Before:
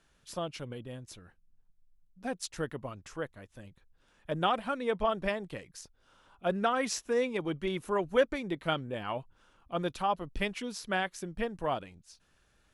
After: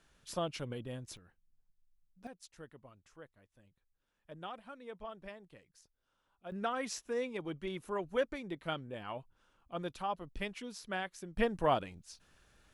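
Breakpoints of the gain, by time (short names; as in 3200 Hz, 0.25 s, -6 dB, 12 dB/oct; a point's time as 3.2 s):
0 dB
from 1.17 s -7.5 dB
from 2.27 s -16.5 dB
from 6.52 s -7 dB
from 11.37 s +2.5 dB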